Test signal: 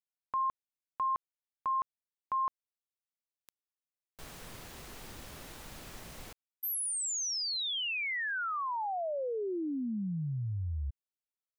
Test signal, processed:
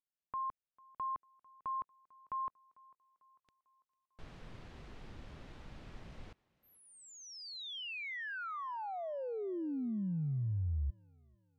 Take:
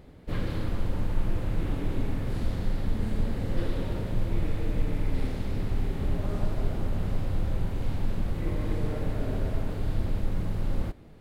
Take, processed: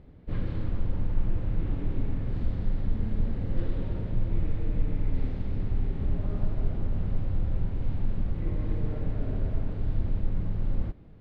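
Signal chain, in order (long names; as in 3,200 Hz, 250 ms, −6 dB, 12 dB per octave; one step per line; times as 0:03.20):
low-pass filter 3,600 Hz 12 dB per octave
low-shelf EQ 300 Hz +8.5 dB
on a send: feedback echo with a high-pass in the loop 447 ms, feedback 50%, high-pass 160 Hz, level −24 dB
on the sum: level −7.5 dB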